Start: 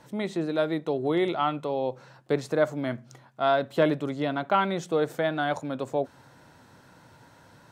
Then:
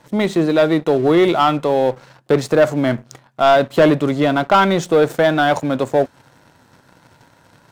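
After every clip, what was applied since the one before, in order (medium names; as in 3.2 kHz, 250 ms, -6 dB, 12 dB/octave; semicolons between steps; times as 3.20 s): waveshaping leveller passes 2; trim +5.5 dB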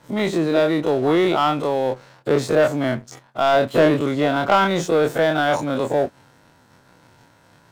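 every event in the spectrogram widened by 60 ms; trim -6.5 dB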